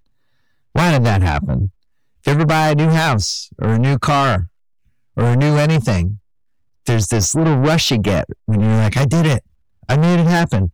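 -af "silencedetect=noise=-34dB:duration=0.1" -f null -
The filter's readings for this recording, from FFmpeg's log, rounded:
silence_start: 0.00
silence_end: 0.75 | silence_duration: 0.75
silence_start: 1.69
silence_end: 2.24 | silence_duration: 0.55
silence_start: 4.47
silence_end: 5.17 | silence_duration: 0.70
silence_start: 6.17
silence_end: 6.86 | silence_duration: 0.69
silence_start: 8.33
silence_end: 8.48 | silence_duration: 0.15
silence_start: 9.39
silence_end: 9.83 | silence_duration: 0.44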